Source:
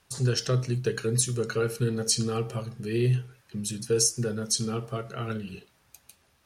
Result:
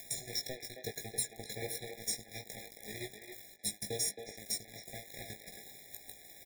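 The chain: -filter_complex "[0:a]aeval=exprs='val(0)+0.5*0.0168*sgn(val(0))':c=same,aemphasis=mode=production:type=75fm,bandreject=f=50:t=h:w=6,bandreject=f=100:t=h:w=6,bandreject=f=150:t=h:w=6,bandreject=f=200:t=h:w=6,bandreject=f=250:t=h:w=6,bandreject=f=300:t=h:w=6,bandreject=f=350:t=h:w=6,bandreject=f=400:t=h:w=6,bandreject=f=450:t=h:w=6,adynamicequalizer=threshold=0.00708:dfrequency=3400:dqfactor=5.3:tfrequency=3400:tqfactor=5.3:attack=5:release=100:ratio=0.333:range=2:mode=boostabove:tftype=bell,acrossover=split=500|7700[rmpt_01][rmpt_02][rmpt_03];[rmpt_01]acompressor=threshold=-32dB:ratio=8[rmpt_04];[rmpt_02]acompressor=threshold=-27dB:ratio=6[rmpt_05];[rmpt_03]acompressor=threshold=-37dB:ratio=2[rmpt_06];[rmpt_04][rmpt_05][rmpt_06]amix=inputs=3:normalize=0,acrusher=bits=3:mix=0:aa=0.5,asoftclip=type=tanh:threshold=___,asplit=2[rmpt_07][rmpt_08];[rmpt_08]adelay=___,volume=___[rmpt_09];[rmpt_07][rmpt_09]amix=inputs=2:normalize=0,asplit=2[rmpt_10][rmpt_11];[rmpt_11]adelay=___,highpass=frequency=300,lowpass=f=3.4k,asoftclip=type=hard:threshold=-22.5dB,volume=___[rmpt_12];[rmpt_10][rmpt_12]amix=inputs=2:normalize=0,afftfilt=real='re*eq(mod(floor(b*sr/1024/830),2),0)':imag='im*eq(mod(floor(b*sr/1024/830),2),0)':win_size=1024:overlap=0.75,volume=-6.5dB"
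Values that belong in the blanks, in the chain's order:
-17.5dB, 19, -5dB, 270, -6dB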